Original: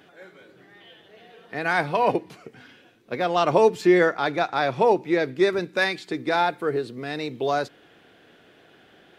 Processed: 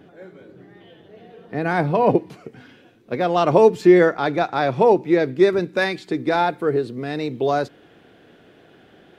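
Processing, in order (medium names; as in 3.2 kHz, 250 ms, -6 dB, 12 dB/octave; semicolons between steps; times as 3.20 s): tilt shelf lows +8.5 dB, about 710 Hz, from 2.16 s lows +4 dB; trim +3 dB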